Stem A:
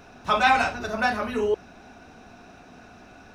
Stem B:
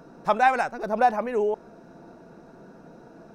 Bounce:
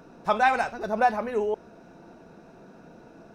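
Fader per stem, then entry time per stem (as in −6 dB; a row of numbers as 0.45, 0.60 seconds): −12.5, −2.0 decibels; 0.00, 0.00 seconds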